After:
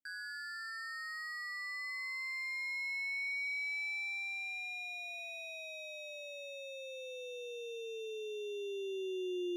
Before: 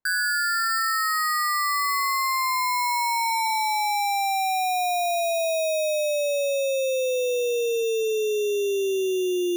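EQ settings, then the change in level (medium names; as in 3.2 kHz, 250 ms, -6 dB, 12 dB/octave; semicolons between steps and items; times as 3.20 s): vowel filter i; +1.0 dB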